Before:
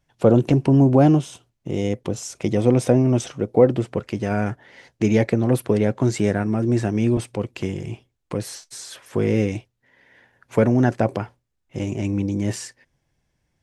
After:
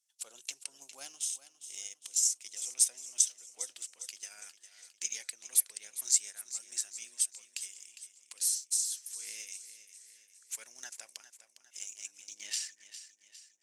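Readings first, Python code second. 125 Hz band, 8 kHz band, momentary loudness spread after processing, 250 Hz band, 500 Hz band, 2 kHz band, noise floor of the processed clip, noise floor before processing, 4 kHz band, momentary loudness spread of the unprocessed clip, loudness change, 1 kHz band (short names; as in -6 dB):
under -40 dB, +8.0 dB, 21 LU, under -40 dB, under -40 dB, -17.0 dB, -70 dBFS, -74 dBFS, -1.5 dB, 17 LU, -12.5 dB, under -30 dB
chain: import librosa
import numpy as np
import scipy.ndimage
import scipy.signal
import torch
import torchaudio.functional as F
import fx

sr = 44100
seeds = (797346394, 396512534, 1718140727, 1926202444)

p1 = np.diff(x, prepend=0.0)
p2 = fx.filter_sweep_bandpass(p1, sr, from_hz=7700.0, to_hz=520.0, start_s=12.21, end_s=13.23, q=1.2)
p3 = np.sign(p2) * np.maximum(np.abs(p2) - 10.0 ** (-57.0 / 20.0), 0.0)
p4 = p2 + (p3 * librosa.db_to_amplitude(-11.0))
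p5 = fx.transient(p4, sr, attack_db=5, sustain_db=-3)
p6 = fx.echo_feedback(p5, sr, ms=406, feedback_pct=50, wet_db=-13)
y = p6 * librosa.db_to_amplitude(4.5)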